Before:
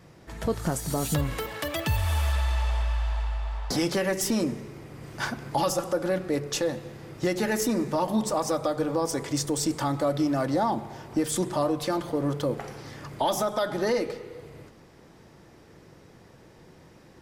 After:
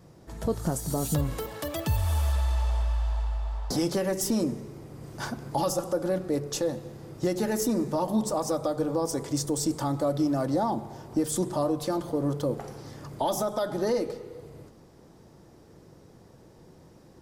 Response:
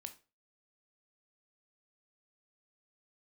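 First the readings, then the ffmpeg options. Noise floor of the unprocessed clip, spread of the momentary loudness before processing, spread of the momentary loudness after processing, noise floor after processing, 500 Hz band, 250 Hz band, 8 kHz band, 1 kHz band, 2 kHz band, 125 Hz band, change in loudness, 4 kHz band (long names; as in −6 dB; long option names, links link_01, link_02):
−53 dBFS, 9 LU, 10 LU, −54 dBFS, −1.0 dB, −0.5 dB, −1.5 dB, −2.5 dB, −8.0 dB, 0.0 dB, −1.0 dB, −4.0 dB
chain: -af "equalizer=frequency=2200:width=0.82:gain=-9.5"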